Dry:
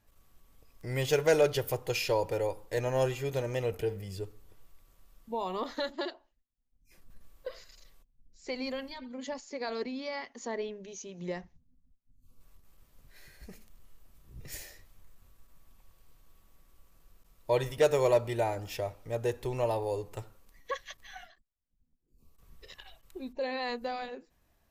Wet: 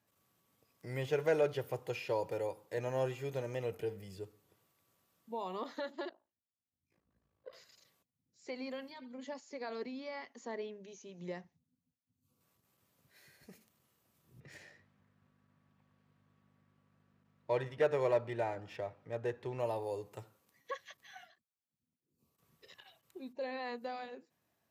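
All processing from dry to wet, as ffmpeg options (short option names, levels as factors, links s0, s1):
-filter_complex "[0:a]asettb=1/sr,asplit=3[s0][s1][s2];[s0]atrim=end=6.094[s3];[s1]atrim=start=6.09:end=7.53,asetpts=PTS-STARTPTS,afade=t=in:d=0.004:c=qsin,afade=t=out:st=1.436:d=0.004:c=qsin,lowpass=f=1100:p=1,tremolo=f=54:d=0.889[s4];[s2]atrim=start=7.526[s5];[s3][s4]acrossfade=d=0.004:c1=hsin:c2=qsin[s6];[s6][s5]acrossfade=d=0.004:c1=qsin:c2=hsin,asettb=1/sr,asplit=3[s7][s8][s9];[s7]atrim=end=14.404[s10];[s8]atrim=start=14.4:end=19.6,asetpts=PTS-STARTPTS,afade=t=in:d=0.004:c=qsin,afade=t=out:st=5.196:d=0.004:c=qsin,equalizer=f=1700:w=2.2:g=5,adynamicsmooth=sensitivity=7.5:basefreq=3200,aeval=exprs='val(0)+0.00112*(sin(2*PI*50*n/s)+sin(2*PI*2*50*n/s)/2+sin(2*PI*3*50*n/s)/3+sin(2*PI*4*50*n/s)/4+sin(2*PI*5*50*n/s)/5)':c=same[s11];[s9]atrim=start=19.596[s12];[s10][s11]acrossfade=d=0.004:c1=hsin:c2=qsin[s13];[s13][s12]acrossfade=d=0.004:c1=qsin:c2=hsin,acrossover=split=2800[s14][s15];[s15]acompressor=threshold=0.00355:ratio=4:attack=1:release=60[s16];[s14][s16]amix=inputs=2:normalize=0,highpass=f=110:w=0.5412,highpass=f=110:w=1.3066,volume=0.501"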